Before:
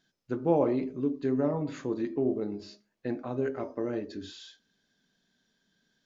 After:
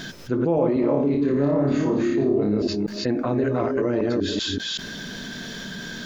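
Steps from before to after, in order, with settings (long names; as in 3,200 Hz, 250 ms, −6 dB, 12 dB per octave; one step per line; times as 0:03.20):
delay that plays each chunk backwards 191 ms, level −1 dB
bass and treble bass +2 dB, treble −3 dB
notch filter 790 Hz, Q 12
0:00.81–0:02.62: flutter between parallel walls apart 4.9 metres, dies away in 0.49 s
envelope flattener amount 70%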